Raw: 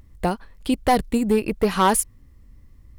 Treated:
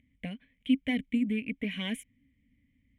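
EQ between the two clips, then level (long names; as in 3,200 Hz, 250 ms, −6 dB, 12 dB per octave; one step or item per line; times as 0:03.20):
formant filter i
phaser with its sweep stopped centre 1,300 Hz, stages 6
+7.5 dB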